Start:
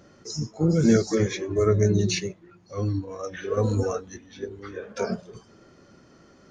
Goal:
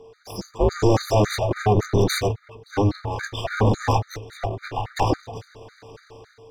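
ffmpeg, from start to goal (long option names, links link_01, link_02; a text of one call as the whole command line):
ffmpeg -i in.wav -af "alimiter=limit=-18.5dB:level=0:latency=1:release=20,dynaudnorm=framelen=130:gausssize=7:maxgain=10dB,aeval=exprs='abs(val(0))':channel_layout=same,equalizer=frequency=125:width_type=o:width=1:gain=8,equalizer=frequency=500:width_type=o:width=1:gain=9,equalizer=frequency=1000:width_type=o:width=1:gain=7,equalizer=frequency=2000:width_type=o:width=1:gain=4,equalizer=frequency=4000:width_type=o:width=1:gain=8,aeval=exprs='val(0)+0.0112*sin(2*PI*560*n/s)':channel_layout=same,afreqshift=-110,afftfilt=real='re*gt(sin(2*PI*3.6*pts/sr)*(1-2*mod(floor(b*sr/1024/1200),2)),0)':imag='im*gt(sin(2*PI*3.6*pts/sr)*(1-2*mod(floor(b*sr/1024/1200),2)),0)':win_size=1024:overlap=0.75,volume=-4.5dB" out.wav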